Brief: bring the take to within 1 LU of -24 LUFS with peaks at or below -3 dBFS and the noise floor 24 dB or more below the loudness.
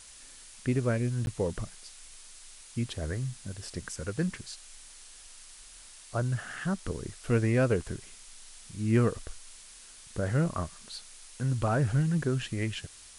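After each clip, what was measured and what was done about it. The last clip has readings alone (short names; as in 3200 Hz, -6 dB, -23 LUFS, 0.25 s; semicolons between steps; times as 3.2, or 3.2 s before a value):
dropouts 1; longest dropout 11 ms; noise floor -51 dBFS; noise floor target -55 dBFS; loudness -31.0 LUFS; peak -14.0 dBFS; loudness target -24.0 LUFS
-> interpolate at 1.26, 11 ms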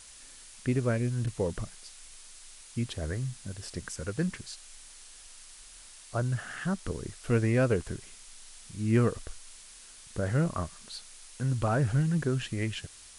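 dropouts 0; noise floor -51 dBFS; noise floor target -55 dBFS
-> denoiser 6 dB, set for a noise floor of -51 dBFS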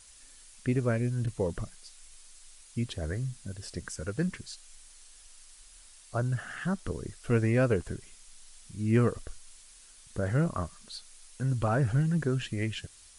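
noise floor -55 dBFS; loudness -31.0 LUFS; peak -14.0 dBFS; loudness target -24.0 LUFS
-> gain +7 dB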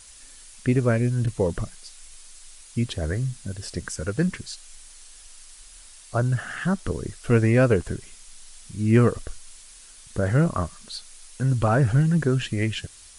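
loudness -24.0 LUFS; peak -7.0 dBFS; noise floor -48 dBFS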